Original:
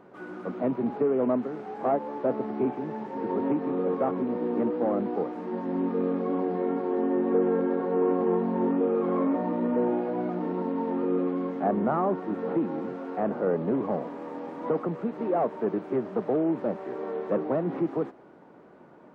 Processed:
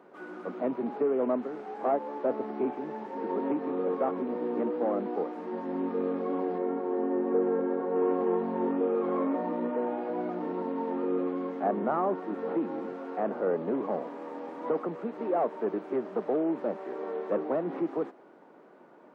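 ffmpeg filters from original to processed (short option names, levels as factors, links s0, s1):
-filter_complex "[0:a]asettb=1/sr,asplit=3[s0][s1][s2];[s0]atrim=end=6.584[s3];[s1]atrim=start=6.58:end=7.96,asetpts=PTS-STARTPTS,afade=t=in:d=0.004:c=qsin,afade=t=out:st=1.376:d=0.004:c=qsin,lowpass=f=1800:p=1[s4];[s2]atrim=start=7.956[s5];[s3][s4]acrossfade=d=0.004:c1=hsin:c2=qsin[s6];[s6][s5]acrossfade=d=0.004:c1=qsin:c2=hsin,asettb=1/sr,asplit=3[s7][s8][s9];[s7]atrim=end=9.684[s10];[s8]atrim=start=9.68:end=10.1,asetpts=PTS-STARTPTS,afade=t=in:d=0.004:c=qsin,afade=t=out:st=0.416:d=0.004:c=qsin,bandreject=f=60:t=h:w=6,bandreject=f=120:t=h:w=6,bandreject=f=180:t=h:w=6,bandreject=f=240:t=h:w=6,bandreject=f=300:t=h:w=6,bandreject=f=360:t=h:w=6,bandreject=f=420:t=h:w=6,bandreject=f=480:t=h:w=6,bandreject=f=540:t=h:w=6[s11];[s9]atrim=start=10.096[s12];[s10][s11]acrossfade=d=0.004:c1=hsin:c2=qsin[s13];[s13][s12]acrossfade=d=0.004:c1=qsin:c2=hsin,highpass=260,volume=0.841"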